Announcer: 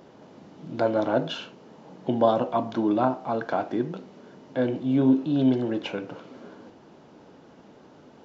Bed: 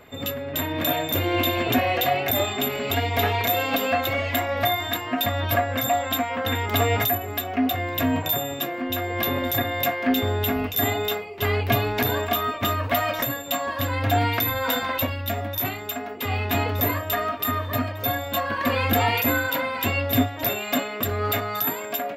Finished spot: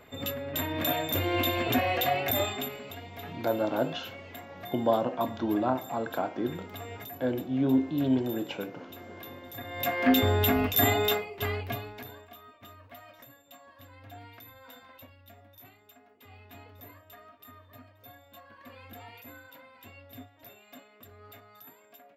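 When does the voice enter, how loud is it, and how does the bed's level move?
2.65 s, −4.5 dB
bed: 0:02.47 −5 dB
0:03.00 −20.5 dB
0:09.51 −20.5 dB
0:10.01 −0.5 dB
0:11.15 −0.5 dB
0:12.29 −26.5 dB

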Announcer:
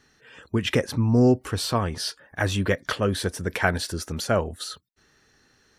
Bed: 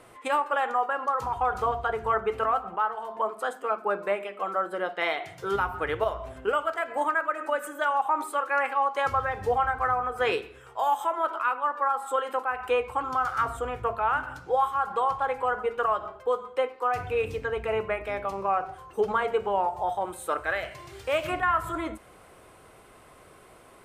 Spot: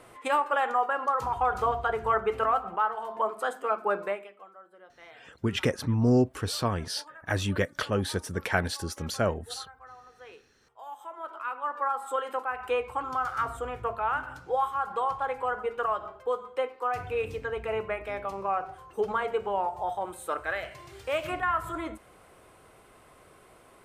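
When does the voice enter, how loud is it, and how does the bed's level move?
4.90 s, −4.0 dB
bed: 0:04.02 0 dB
0:04.54 −23.5 dB
0:10.54 −23.5 dB
0:11.77 −3 dB

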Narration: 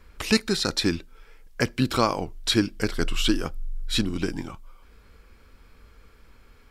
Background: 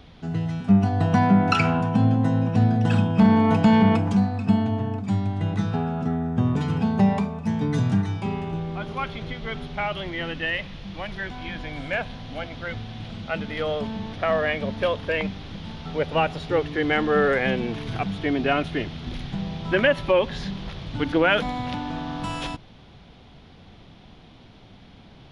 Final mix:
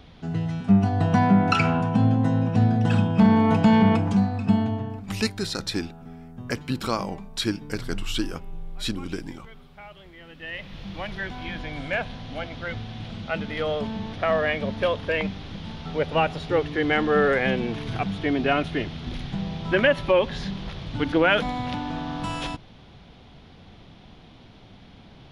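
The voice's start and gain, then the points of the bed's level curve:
4.90 s, −4.5 dB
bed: 0:04.63 −0.5 dB
0:05.57 −17 dB
0:10.24 −17 dB
0:10.80 0 dB

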